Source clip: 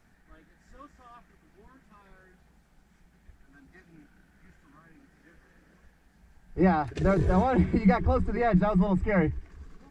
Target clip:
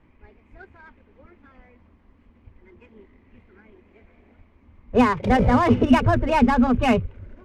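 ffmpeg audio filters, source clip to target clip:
-af "asetrate=58653,aresample=44100,adynamicsmooth=sensitivity=6.5:basefreq=2k,volume=6dB"

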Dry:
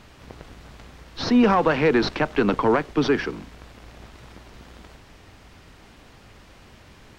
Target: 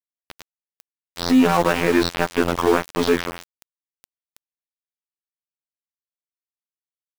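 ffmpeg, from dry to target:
-af "acontrast=83,afftfilt=real='hypot(re,im)*cos(PI*b)':imag='0':win_size=2048:overlap=0.75,aeval=exprs='val(0)*gte(abs(val(0)),0.0891)':c=same,volume=-1dB"

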